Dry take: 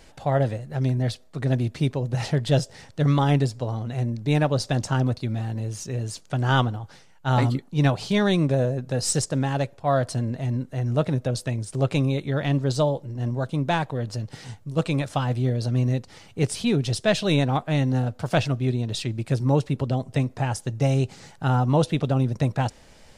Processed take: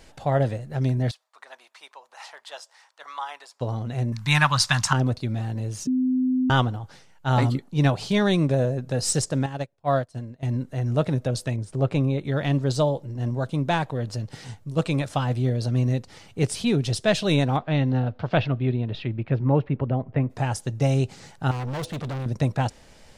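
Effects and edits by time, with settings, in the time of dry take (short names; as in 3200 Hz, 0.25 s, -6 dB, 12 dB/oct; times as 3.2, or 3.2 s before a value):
1.11–3.61 ladder high-pass 850 Hz, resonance 50%
4.12–4.93 EQ curve 170 Hz 0 dB, 430 Hz -20 dB, 700 Hz -5 dB, 1000 Hz +14 dB, 3400 Hz +10 dB
5.87–6.5 bleep 256 Hz -19 dBFS
9.46–10.43 upward expander 2.5:1, over -35 dBFS
11.56–12.25 high shelf 2900 Hz -11 dB
17.56–20.29 LPF 4600 Hz -> 2100 Hz 24 dB/oct
21.51–22.26 overloaded stage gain 28 dB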